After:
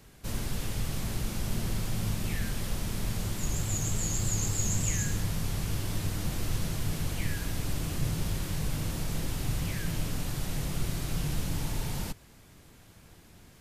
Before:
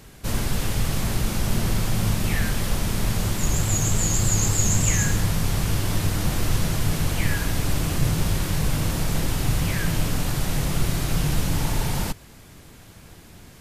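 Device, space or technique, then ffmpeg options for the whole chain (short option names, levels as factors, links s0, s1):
one-band saturation: -filter_complex "[0:a]acrossover=split=540|2100[s0][s1][s2];[s1]asoftclip=type=tanh:threshold=0.0158[s3];[s0][s3][s2]amix=inputs=3:normalize=0,volume=0.376"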